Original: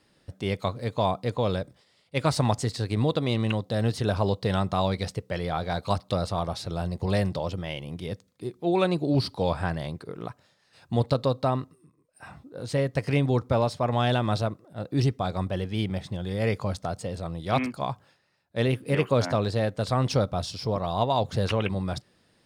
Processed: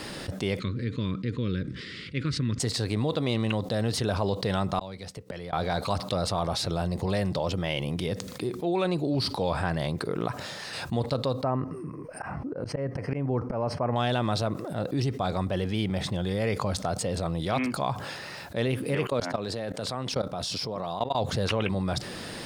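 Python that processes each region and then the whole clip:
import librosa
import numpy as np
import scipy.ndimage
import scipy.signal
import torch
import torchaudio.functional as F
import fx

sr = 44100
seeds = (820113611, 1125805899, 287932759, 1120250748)

y = fx.chain(x, sr, fx.cheby1_bandstop(low_hz=330.0, high_hz=1700.0, order=2),
    fx.spacing_loss(db_at_10k=24), at=(0.59, 2.6))
y = fx.chain(y, sr, fx.gate_flip(shuts_db=-27.0, range_db=-39),
    fx.band_squash(depth_pct=40), at=(4.79, 5.53))
y = fx.chain(y, sr, fx.auto_swell(attack_ms=221.0),
    fx.moving_average(points=12), at=(11.43, 13.96))
y = fx.chain(y, sr, fx.highpass(hz=130.0, slope=12),
    fx.level_steps(step_db=23), at=(19.07, 21.15))
y = fx.peak_eq(y, sr, hz=80.0, db=-3.5, octaves=1.9)
y = fx.env_flatten(y, sr, amount_pct=70)
y = y * 10.0 ** (-4.5 / 20.0)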